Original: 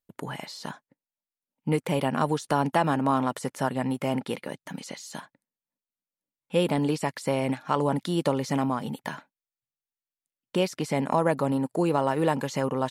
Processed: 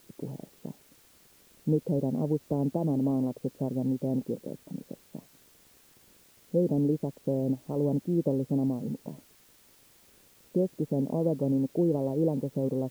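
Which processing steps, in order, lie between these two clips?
crackle 180 per s -35 dBFS; inverse Chebyshev low-pass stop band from 2.3 kHz, stop band 70 dB; word length cut 10-bit, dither triangular

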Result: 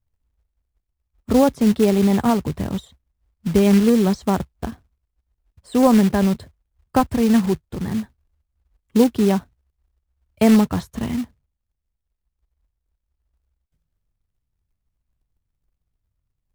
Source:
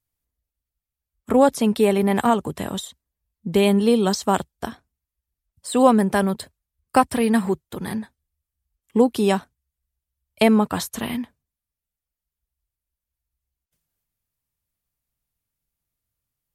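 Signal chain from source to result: RIAA curve playback; short-mantissa float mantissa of 2-bit; trim -3.5 dB

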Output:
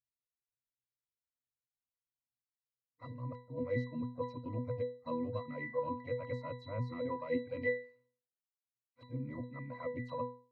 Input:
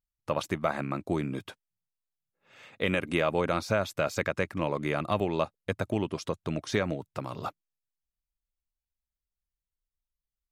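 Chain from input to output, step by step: reverse the whole clip; reverb removal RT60 1.5 s; harmony voices +7 st -13 dB; pitch-class resonator B, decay 0.39 s; trim +9.5 dB

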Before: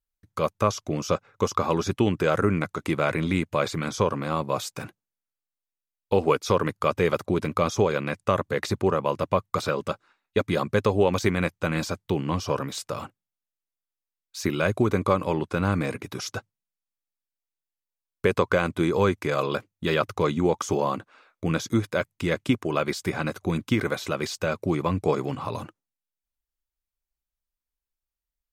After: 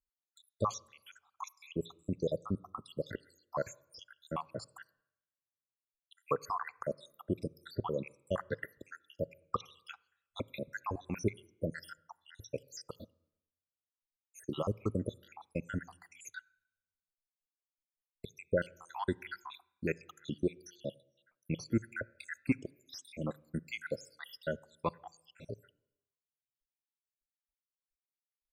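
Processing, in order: random holes in the spectrogram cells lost 83%; on a send: reverberation RT60 0.85 s, pre-delay 3 ms, DRR 21.5 dB; on the sum: trim -7 dB

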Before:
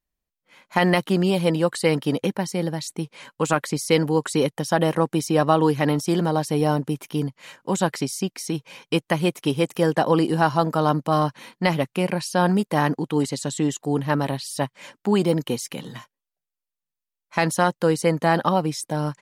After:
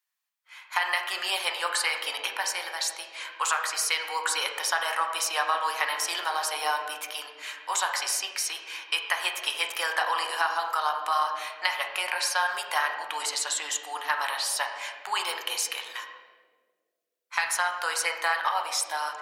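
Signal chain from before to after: high-pass 1 kHz 24 dB/octave; compression, threshold -28 dBFS, peak gain reduction 9.5 dB; on a send: reverberation RT60 1.7 s, pre-delay 5 ms, DRR 2 dB; on the sum: trim +5 dB

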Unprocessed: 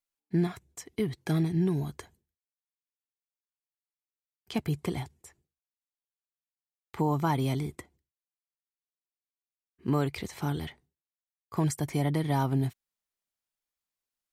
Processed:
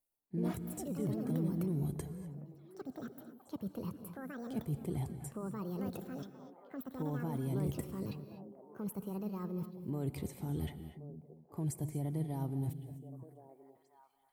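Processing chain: reverse; compression 6:1, threshold -40 dBFS, peak gain reduction 17 dB; reverse; high-order bell 2.8 kHz -12.5 dB 2.9 oct; on a send: repeats whose band climbs or falls 536 ms, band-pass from 190 Hz, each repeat 1.4 oct, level -10 dB; on the sum: ever faster or slower copies 119 ms, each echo +5 st, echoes 2; gated-style reverb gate 270 ms rising, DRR 11.5 dB; dynamic bell 840 Hz, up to -6 dB, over -60 dBFS, Q 0.72; trim +6 dB

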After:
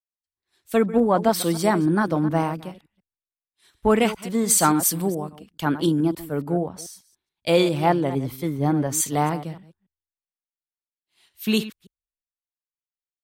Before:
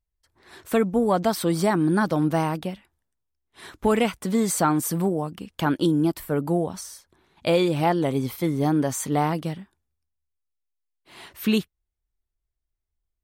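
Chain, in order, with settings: chunks repeated in reverse 143 ms, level -11.5 dB; three bands expanded up and down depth 100%

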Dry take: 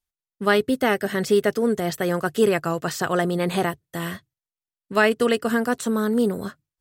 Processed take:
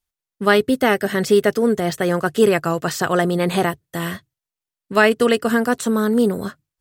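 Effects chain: 1.69–2.40 s: decimation joined by straight lines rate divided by 2×; trim +4 dB

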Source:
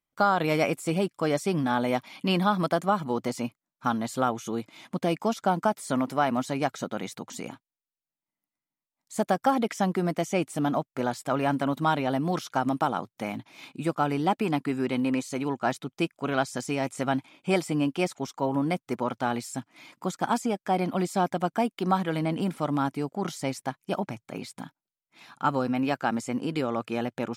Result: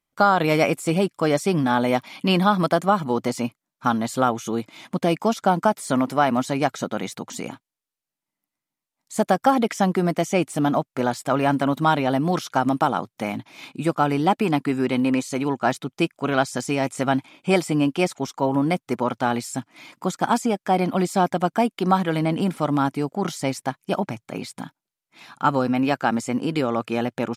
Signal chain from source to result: resampled via 32 kHz; trim +5.5 dB

